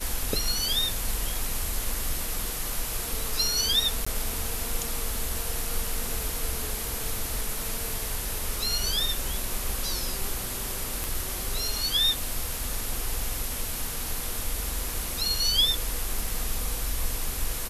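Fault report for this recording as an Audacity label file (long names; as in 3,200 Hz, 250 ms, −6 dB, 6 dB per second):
4.050000	4.070000	drop-out 15 ms
11.040000	11.040000	click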